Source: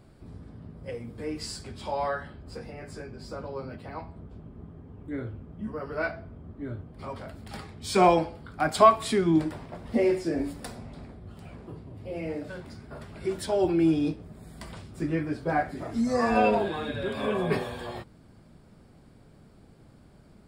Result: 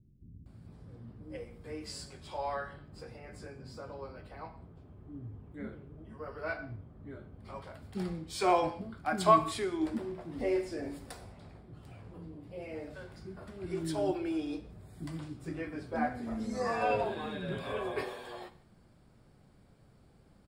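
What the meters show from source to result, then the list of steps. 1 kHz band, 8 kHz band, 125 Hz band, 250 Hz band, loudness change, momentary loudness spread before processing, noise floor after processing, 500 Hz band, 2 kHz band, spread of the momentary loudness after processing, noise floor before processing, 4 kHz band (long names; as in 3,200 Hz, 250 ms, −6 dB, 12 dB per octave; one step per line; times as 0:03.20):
−6.0 dB, −6.5 dB, −7.5 dB, −8.5 dB, −7.5 dB, 22 LU, −62 dBFS, −7.5 dB, −6.5 dB, 20 LU, −55 dBFS, −6.5 dB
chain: multiband delay without the direct sound lows, highs 460 ms, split 280 Hz
reverb whose tail is shaped and stops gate 230 ms falling, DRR 11.5 dB
level −6.5 dB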